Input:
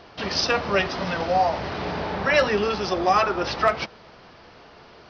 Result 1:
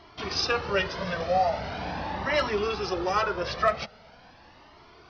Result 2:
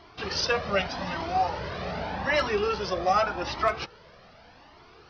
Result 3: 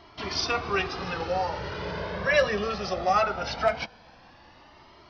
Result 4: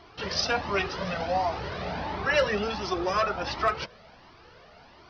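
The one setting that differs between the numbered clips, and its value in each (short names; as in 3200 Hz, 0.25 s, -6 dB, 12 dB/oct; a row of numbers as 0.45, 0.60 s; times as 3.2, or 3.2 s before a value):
cascading flanger, rate: 0.42, 0.84, 0.2, 1.4 Hz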